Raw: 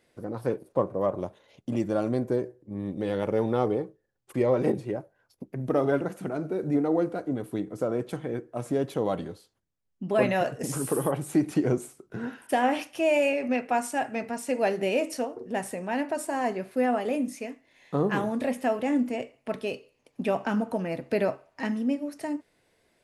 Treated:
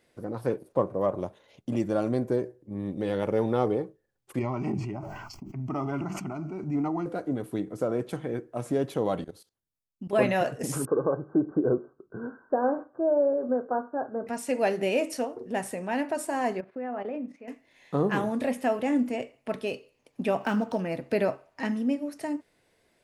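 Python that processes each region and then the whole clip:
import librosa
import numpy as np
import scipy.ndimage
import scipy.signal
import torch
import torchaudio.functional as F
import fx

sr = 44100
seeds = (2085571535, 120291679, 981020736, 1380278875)

y = fx.chain(x, sr, fx.high_shelf(hz=4700.0, db=-5.5),
    fx.fixed_phaser(hz=2500.0, stages=8),
    fx.sustainer(db_per_s=27.0), at=(4.39, 7.06))
y = fx.chain(y, sr, fx.high_shelf(hz=5800.0, db=8.5),
    fx.level_steps(step_db=18),
    fx.notch(hz=7300.0, q=26.0), at=(9.24, 10.13))
y = fx.chain(y, sr, fx.cheby_ripple(hz=1600.0, ripple_db=6),
    fx.dynamic_eq(hz=520.0, q=2.2, threshold_db=-42.0, ratio=4.0, max_db=5), at=(10.85, 14.27))
y = fx.chain(y, sr, fx.lowpass(hz=1800.0, slope=12),
    fx.low_shelf(hz=99.0, db=-10.0),
    fx.level_steps(step_db=11), at=(16.6, 17.48))
y = fx.chain(y, sr, fx.high_shelf(hz=2200.0, db=6.0),
    fx.resample_linear(factor=3), at=(20.41, 20.81))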